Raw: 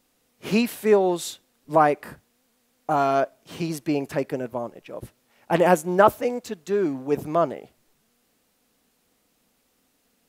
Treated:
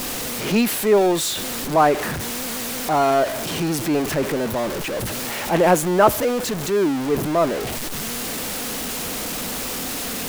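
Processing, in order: zero-crossing step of -23 dBFS; transient shaper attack -3 dB, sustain +1 dB; gain +1.5 dB

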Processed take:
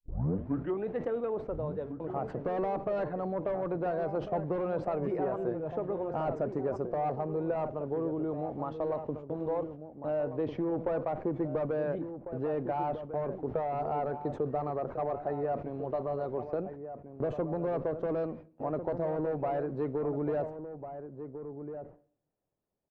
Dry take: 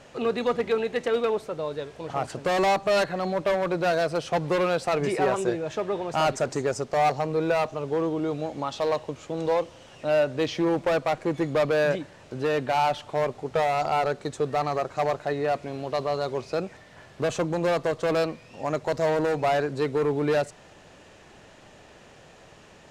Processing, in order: tape start at the beginning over 0.88 s; Bessel low-pass 680 Hz, order 2; gate -41 dBFS, range -33 dB; harmonic-percussive split harmonic -4 dB; compressor 2.5:1, threshold -30 dBFS, peak gain reduction 6 dB; outdoor echo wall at 240 m, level -9 dB; on a send at -21 dB: reverb RT60 0.70 s, pre-delay 3 ms; on the sum: sustainer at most 130 dB/s

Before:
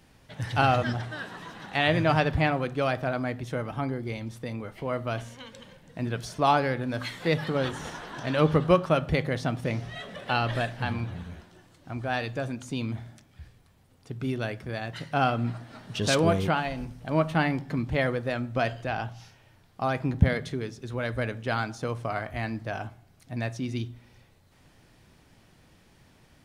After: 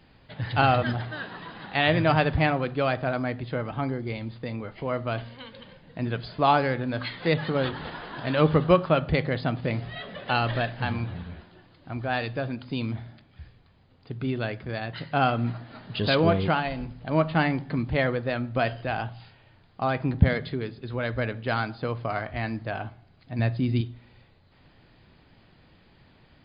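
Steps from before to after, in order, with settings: 23.39–23.81 low shelf 240 Hz +9 dB; gain +1.5 dB; MP2 64 kbps 16000 Hz

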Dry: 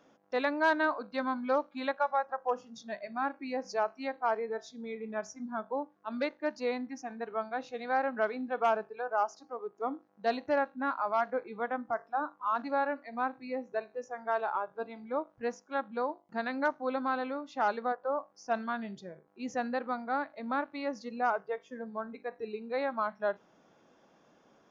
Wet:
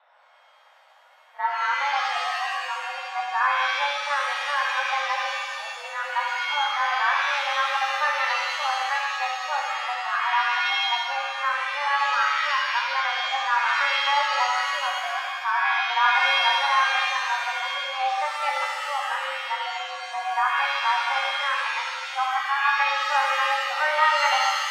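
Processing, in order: whole clip reversed; mistuned SSB +290 Hz 300–3600 Hz; shimmer reverb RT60 1.6 s, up +7 st, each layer -2 dB, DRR -0.5 dB; gain +4 dB

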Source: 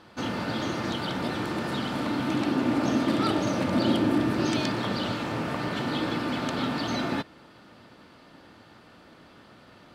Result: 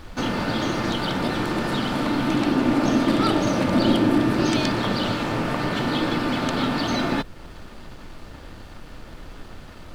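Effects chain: in parallel at -0.5 dB: compressor, threshold -40 dBFS, peak gain reduction 19.5 dB; on the sum: crossover distortion -53 dBFS; added noise brown -43 dBFS; gain +4 dB

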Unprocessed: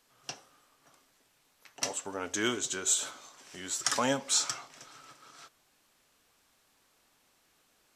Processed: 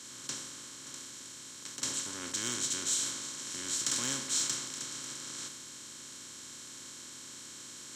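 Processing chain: per-bin compression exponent 0.2; passive tone stack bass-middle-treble 6-0-2; in parallel at -5.5 dB: hard clip -29.5 dBFS, distortion -22 dB; on the sum: three-band expander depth 100%

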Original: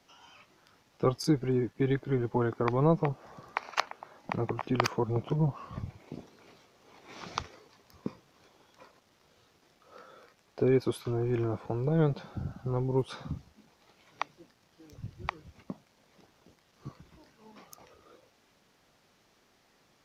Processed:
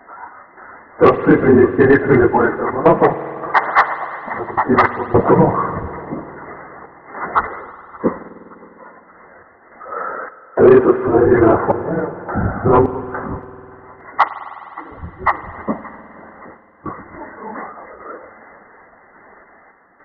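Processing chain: phase scrambler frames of 50 ms; brick-wall FIR low-pass 2100 Hz; bell 130 Hz -11 dB 0.54 oct; random-step tremolo, depth 95%; low shelf 410 Hz -11 dB; thinning echo 0.574 s, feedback 65%, high-pass 1000 Hz, level -20 dB; soft clip -29.5 dBFS, distortion -14 dB; spring tank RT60 3 s, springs 50 ms, chirp 35 ms, DRR 13.5 dB; maximiser +32.5 dB; gain -1 dB

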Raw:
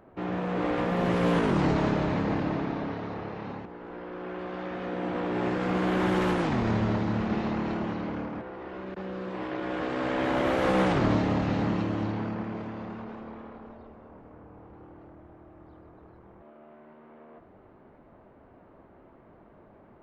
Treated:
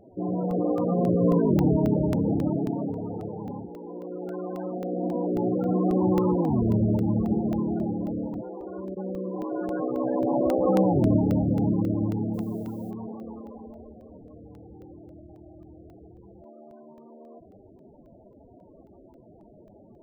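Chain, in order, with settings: loudest bins only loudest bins 16; 12.33–12.9 added noise violet -65 dBFS; crackling interface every 0.27 s, samples 64, zero, from 0.51; gain +4.5 dB

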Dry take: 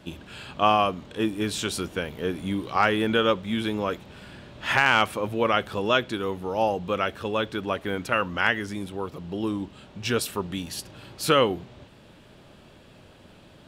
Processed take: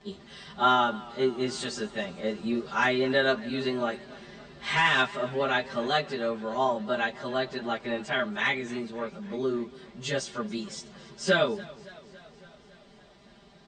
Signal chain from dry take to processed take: pitch shift by moving bins +3 st; Chebyshev low-pass 8600 Hz, order 8; comb 5 ms, depth 92%; warbling echo 0.28 s, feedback 66%, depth 67 cents, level -21 dB; gain -2.5 dB

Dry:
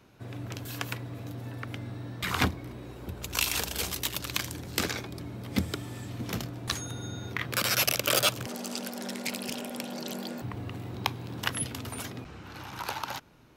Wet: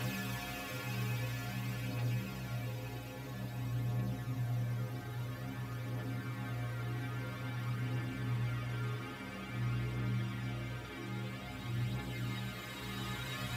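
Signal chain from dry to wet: Paulstretch 13×, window 1.00 s, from 1; metallic resonator 62 Hz, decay 0.49 s, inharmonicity 0.008; phaser 0.5 Hz, delay 2.7 ms, feedback 31%; gain +7.5 dB

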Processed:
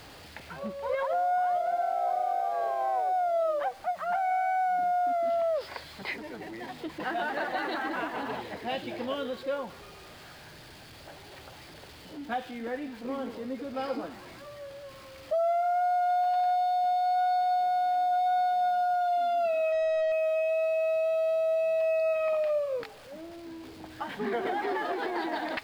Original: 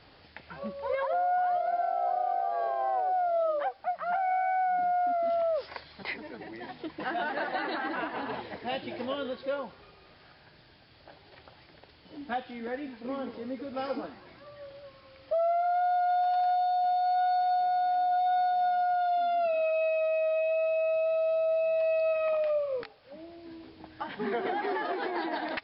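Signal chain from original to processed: zero-crossing step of -46.5 dBFS; 19.72–20.12 overdrive pedal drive 19 dB, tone 1200 Hz, clips at -21.5 dBFS

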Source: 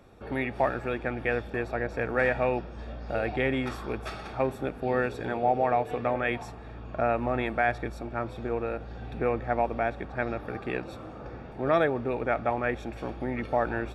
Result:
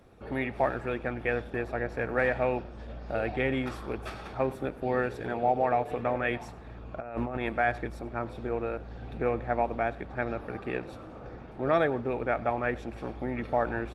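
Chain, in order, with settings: 2.26–3.26 notches 50/100/150 Hz; 6.98–7.49 negative-ratio compressor -31 dBFS, ratio -0.5; echo 98 ms -21 dB; gain -1 dB; Opus 20 kbps 48000 Hz

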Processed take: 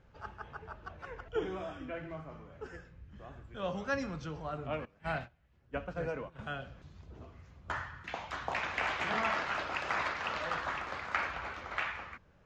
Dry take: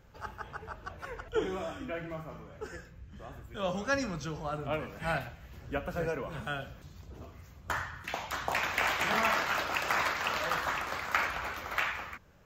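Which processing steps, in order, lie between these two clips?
4.85–6.39 gate -37 dBFS, range -17 dB; air absorption 120 m; gain -3 dB

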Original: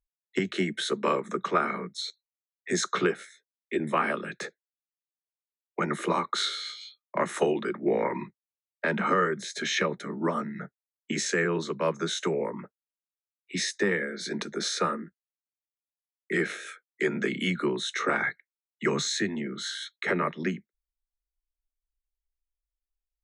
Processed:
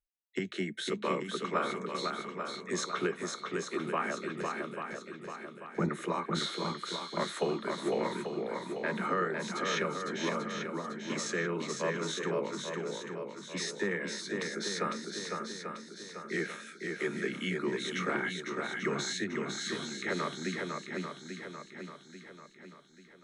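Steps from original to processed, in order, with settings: 4.37–5.89 tilt -4 dB/oct; on a send: swung echo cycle 0.84 s, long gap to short 1.5:1, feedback 44%, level -4 dB; on the sum: gain -7 dB

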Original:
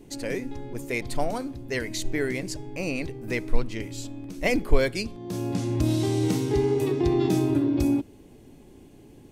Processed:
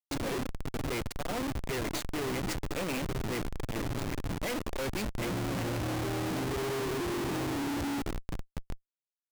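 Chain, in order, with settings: on a send: thinning echo 0.761 s, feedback 33%, high-pass 970 Hz, level -9.5 dB; on the sum: Schmitt trigger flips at -34 dBFS; gain -7 dB

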